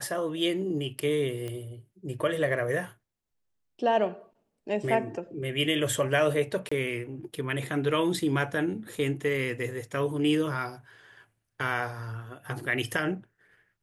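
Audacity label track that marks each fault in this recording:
1.480000	1.480000	pop -23 dBFS
6.690000	6.710000	gap 25 ms

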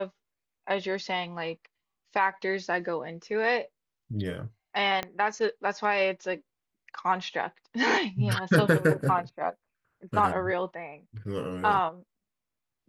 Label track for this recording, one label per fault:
5.030000	5.030000	pop -16 dBFS

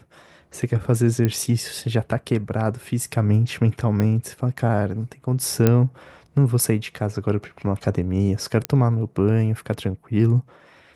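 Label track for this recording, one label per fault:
1.250000	1.250000	pop -9 dBFS
4.000000	4.000000	pop -11 dBFS
5.670000	5.670000	pop -4 dBFS
8.650000	8.650000	pop -7 dBFS

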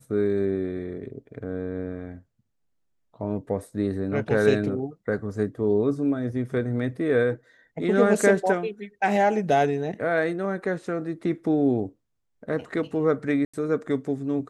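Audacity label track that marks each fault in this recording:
13.450000	13.540000	gap 85 ms

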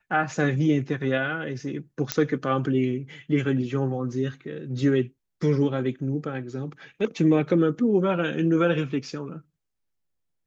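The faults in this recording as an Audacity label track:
2.120000	2.120000	pop -5 dBFS

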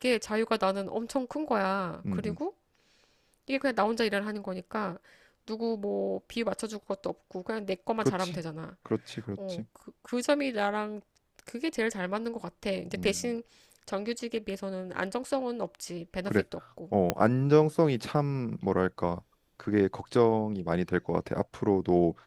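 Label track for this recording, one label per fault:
17.100000	17.100000	pop -10 dBFS

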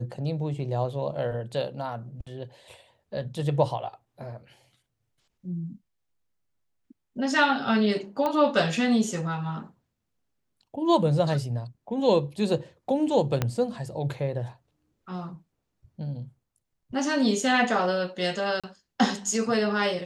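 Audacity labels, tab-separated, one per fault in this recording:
8.260000	8.260000	pop -15 dBFS
13.420000	13.420000	pop -11 dBFS
18.600000	18.640000	gap 36 ms

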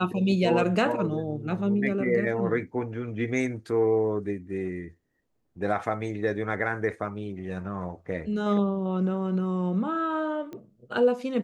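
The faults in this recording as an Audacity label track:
10.530000	10.530000	pop -27 dBFS

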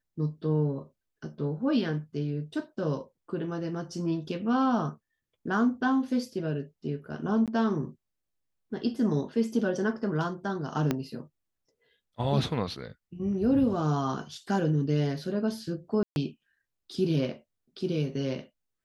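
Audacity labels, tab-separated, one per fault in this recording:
7.460000	7.480000	gap 17 ms
10.910000	10.910000	pop -13 dBFS
16.030000	16.160000	gap 0.131 s

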